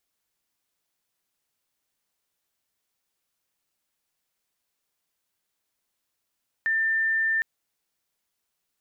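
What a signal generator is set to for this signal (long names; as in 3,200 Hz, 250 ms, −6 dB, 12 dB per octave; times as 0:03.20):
tone sine 1,790 Hz −21 dBFS 0.76 s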